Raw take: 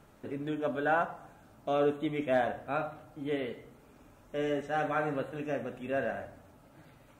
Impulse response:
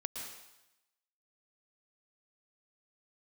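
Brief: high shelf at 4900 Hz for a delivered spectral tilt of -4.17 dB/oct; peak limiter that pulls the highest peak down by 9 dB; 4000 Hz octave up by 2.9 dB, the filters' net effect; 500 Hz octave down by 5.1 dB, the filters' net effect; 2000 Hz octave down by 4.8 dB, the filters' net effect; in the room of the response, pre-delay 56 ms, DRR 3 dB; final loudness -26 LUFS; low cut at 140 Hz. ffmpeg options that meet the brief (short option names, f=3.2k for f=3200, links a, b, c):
-filter_complex "[0:a]highpass=140,equalizer=f=500:t=o:g=-6,equalizer=f=2k:t=o:g=-8.5,equalizer=f=4k:t=o:g=6.5,highshelf=f=4.9k:g=4,alimiter=level_in=5dB:limit=-24dB:level=0:latency=1,volume=-5dB,asplit=2[a][b];[1:a]atrim=start_sample=2205,adelay=56[c];[b][c]afir=irnorm=-1:irlink=0,volume=-3dB[d];[a][d]amix=inputs=2:normalize=0,volume=13dB"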